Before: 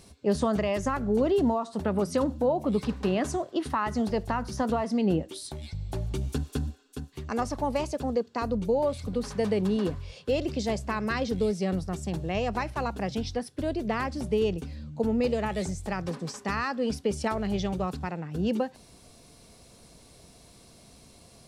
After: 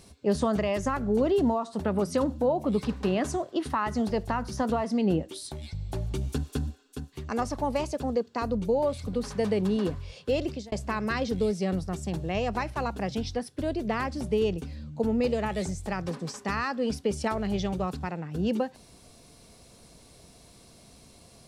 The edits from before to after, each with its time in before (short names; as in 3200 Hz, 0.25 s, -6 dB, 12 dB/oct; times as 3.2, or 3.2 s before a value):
10.45–10.72 fade out